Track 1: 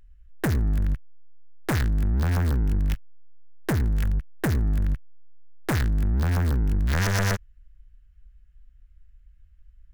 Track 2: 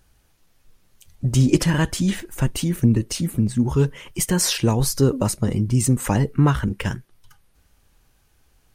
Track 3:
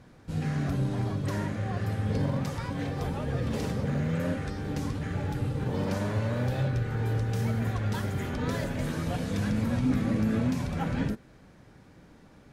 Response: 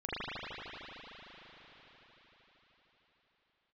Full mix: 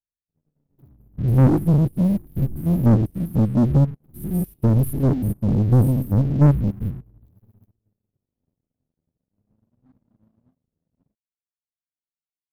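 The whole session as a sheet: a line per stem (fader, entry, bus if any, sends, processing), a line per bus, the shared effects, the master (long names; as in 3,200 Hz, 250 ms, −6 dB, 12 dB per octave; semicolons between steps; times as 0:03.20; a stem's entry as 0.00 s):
−10.5 dB, 0.35 s, no send, automatic ducking −7 dB, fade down 1.00 s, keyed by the second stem
+1.5 dB, 0.00 s, no send, spectrum averaged block by block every 100 ms
−15.0 dB, 0.00 s, no send, no processing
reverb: not used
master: inverse Chebyshev band-stop filter 640–7,500 Hz, stop band 40 dB; leveller curve on the samples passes 3; expander for the loud parts 2.5 to 1, over −37 dBFS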